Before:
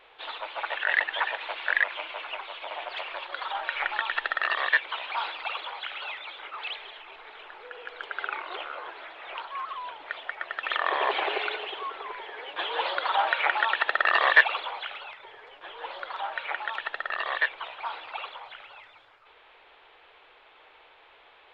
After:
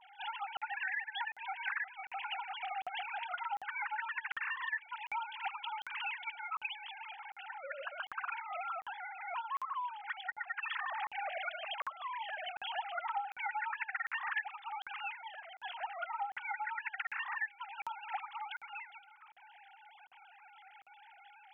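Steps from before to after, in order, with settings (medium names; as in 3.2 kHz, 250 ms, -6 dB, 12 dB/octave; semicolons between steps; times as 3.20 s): formants replaced by sine waves; compression 6:1, threshold -39 dBFS, peak gain reduction 25 dB; crackling interface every 0.75 s, samples 2048, zero, from 0.57 s; trim +2.5 dB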